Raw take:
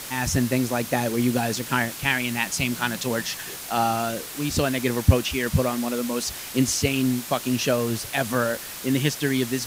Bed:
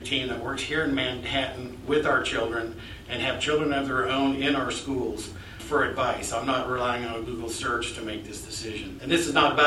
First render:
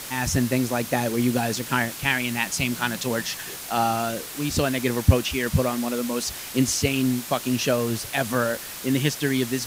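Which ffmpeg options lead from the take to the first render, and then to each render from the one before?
-af anull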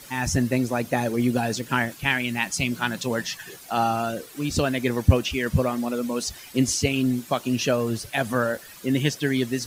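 -af "afftdn=nr=12:nf=-36"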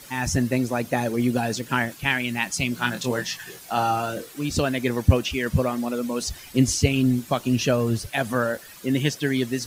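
-filter_complex "[0:a]asettb=1/sr,asplit=3[a][b][c];[a]atrim=end=2.754[d];[b]atrim=start=2.75:end=4.33,asetpts=PTS-STARTPTS,afade=t=in:d=0.004:c=qsin,afade=t=out:st=1.576:d=0.004:c=qsin,asplit=2[e][f];[f]adelay=24,volume=-6dB[g];[e][g]amix=inputs=2:normalize=0,atrim=end_sample=69678[h];[c]atrim=start=4.326[i];[d][h]acrossfade=d=0.004:c1=hsin:c2=qsin[j];[j][i]acrossfade=d=0.004:c1=qsin:c2=hsin,asettb=1/sr,asplit=3[k][l][m];[k]atrim=end=6.214[n];[l]atrim=start=6.21:end=8.07,asetpts=PTS-STARTPTS,afade=t=in:d=0.004:c=qsin,afade=t=out:st=1.856:d=0.004:c=qsin,lowshelf=f=120:g=11[o];[m]atrim=start=8.066[p];[n][o]acrossfade=d=0.004:c1=hsin:c2=qsin[q];[q][p]acrossfade=d=0.004:c1=qsin:c2=hsin"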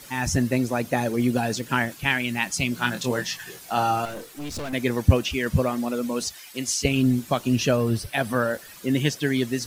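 -filter_complex "[0:a]asettb=1/sr,asplit=3[a][b][c];[a]atrim=end=4.054[d];[b]atrim=start=4.05:end=4.73,asetpts=PTS-STARTPTS,afade=t=in:d=0.004:c=qsin,afade=t=out:st=0.676:d=0.004:c=qsin,aeval=exprs='(tanh(31.6*val(0)+0.5)-tanh(0.5))/31.6':c=same[e];[c]atrim=start=4.726[f];[d][e]acrossfade=d=0.004:c1=hsin:c2=qsin[g];[g][f]acrossfade=d=0.004:c1=qsin:c2=hsin,asettb=1/sr,asplit=3[h][i][j];[h]atrim=end=6.284[k];[i]atrim=start=6.28:end=6.85,asetpts=PTS-STARTPTS,afade=t=in:d=0.004:c=qsin,afade=t=out:st=0.566:d=0.004:c=qsin,highpass=f=1.1k:p=1[l];[j]atrim=start=6.846[m];[k][l]acrossfade=d=0.004:c1=hsin:c2=qsin[n];[n][m]acrossfade=d=0.004:c1=qsin:c2=hsin,asettb=1/sr,asplit=3[o][p][q];[o]atrim=end=7.774[r];[p]atrim=start=7.77:end=8.51,asetpts=PTS-STARTPTS,afade=t=in:d=0.004:c=qsin,afade=t=out:st=0.736:d=0.004:c=qsin,bandreject=f=6.8k:w=5.8[s];[q]atrim=start=8.506[t];[r][s]acrossfade=d=0.004:c1=hsin:c2=qsin[u];[u][t]acrossfade=d=0.004:c1=qsin:c2=hsin"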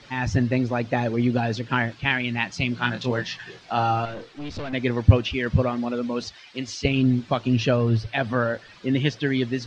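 -af "lowpass=f=4.6k:w=0.5412,lowpass=f=4.6k:w=1.3066,equalizer=f=110:t=o:w=0.22:g=8"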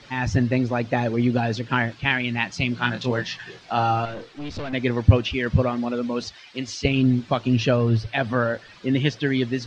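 -af "volume=1dB,alimiter=limit=-2dB:level=0:latency=1"

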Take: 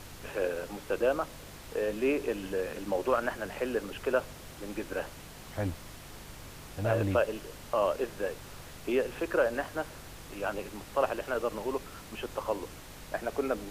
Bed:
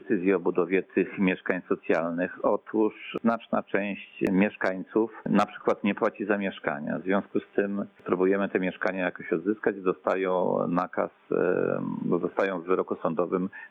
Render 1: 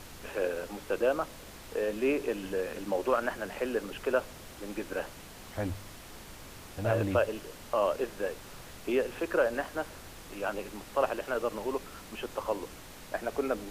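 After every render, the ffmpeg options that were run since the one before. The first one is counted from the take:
-af "bandreject=f=50:t=h:w=4,bandreject=f=100:t=h:w=4,bandreject=f=150:t=h:w=4"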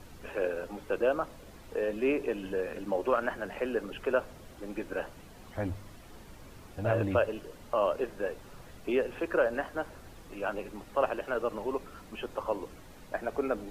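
-af "afftdn=nr=9:nf=-48"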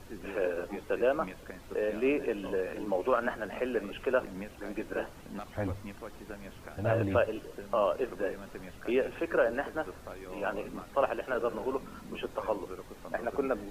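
-filter_complex "[1:a]volume=-19dB[a];[0:a][a]amix=inputs=2:normalize=0"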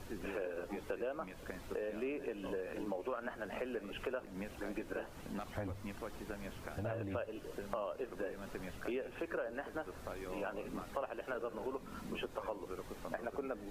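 -af "acompressor=threshold=-38dB:ratio=5"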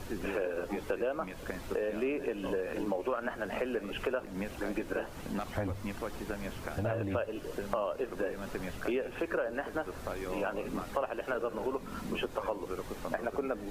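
-af "volume=7dB"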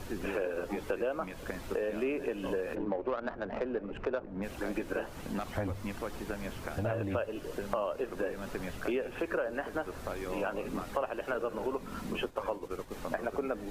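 -filter_complex "[0:a]asplit=3[a][b][c];[a]afade=t=out:st=2.74:d=0.02[d];[b]adynamicsmooth=sensitivity=2:basefreq=1k,afade=t=in:st=2.74:d=0.02,afade=t=out:st=4.42:d=0.02[e];[c]afade=t=in:st=4.42:d=0.02[f];[d][e][f]amix=inputs=3:normalize=0,asettb=1/sr,asplit=3[g][h][i];[g]atrim=end=12.134[j];[h]atrim=start=12.13:end=12.93,asetpts=PTS-STARTPTS,afade=t=in:d=0.004:c=qsin,afade=t=out:st=0.796:d=0.004:c=qsin,agate=range=-33dB:threshold=-37dB:ratio=3:release=100:detection=peak[k];[i]atrim=start=12.926[l];[j][k]acrossfade=d=0.004:c1=hsin:c2=qsin[m];[m][l]acrossfade=d=0.004:c1=qsin:c2=hsin"

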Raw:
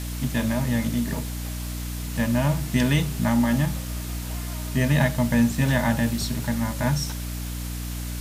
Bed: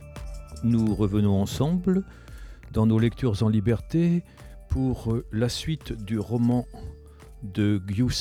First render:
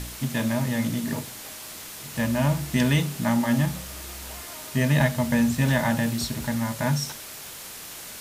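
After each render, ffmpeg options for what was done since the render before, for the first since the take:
-af "bandreject=f=60:t=h:w=4,bandreject=f=120:t=h:w=4,bandreject=f=180:t=h:w=4,bandreject=f=240:t=h:w=4,bandreject=f=300:t=h:w=4"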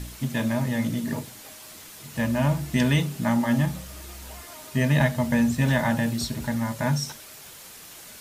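-af "afftdn=nr=6:nf=-40"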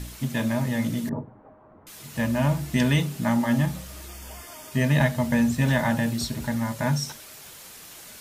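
-filter_complex "[0:a]asettb=1/sr,asplit=3[a][b][c];[a]atrim=end=1.094[d];[b]atrim=start=1.09:end=1.87,asetpts=PTS-STARTPTS,afade=t=in:d=0.004:c=qsin,afade=t=out:st=0.776:d=0.004:c=qsin,lowpass=f=1.1k:w=0.5412,lowpass=f=1.1k:w=1.3066[e];[c]atrim=start=1.866[f];[d][e]acrossfade=d=0.004:c1=hsin:c2=qsin[g];[g][f]acrossfade=d=0.004:c1=qsin:c2=hsin,asettb=1/sr,asplit=3[h][i][j];[h]atrim=end=4.084[k];[i]atrim=start=4.08:end=4.72,asetpts=PTS-STARTPTS,afade=t=in:d=0.004:c=qsin,afade=t=out:st=0.636:d=0.004:c=qsin,asuperstop=centerf=4000:order=20:qfactor=7[l];[j]atrim=start=4.716[m];[k][l]acrossfade=d=0.004:c1=hsin:c2=qsin[n];[n][m]acrossfade=d=0.004:c1=qsin:c2=hsin"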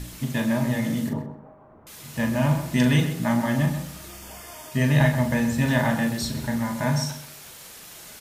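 -filter_complex "[0:a]asplit=2[a][b];[b]adelay=40,volume=-7dB[c];[a][c]amix=inputs=2:normalize=0,asplit=2[d][e];[e]adelay=129,lowpass=f=2.3k:p=1,volume=-8.5dB,asplit=2[f][g];[g]adelay=129,lowpass=f=2.3k:p=1,volume=0.27,asplit=2[h][i];[i]adelay=129,lowpass=f=2.3k:p=1,volume=0.27[j];[f][h][j]amix=inputs=3:normalize=0[k];[d][k]amix=inputs=2:normalize=0"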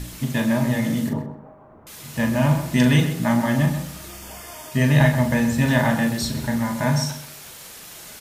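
-af "volume=3dB"

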